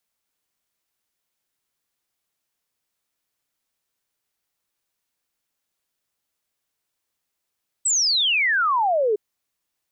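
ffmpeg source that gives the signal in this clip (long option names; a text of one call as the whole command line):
ffmpeg -f lavfi -i "aevalsrc='0.141*clip(min(t,1.31-t)/0.01,0,1)*sin(2*PI*8200*1.31/log(400/8200)*(exp(log(400/8200)*t/1.31)-1))':duration=1.31:sample_rate=44100" out.wav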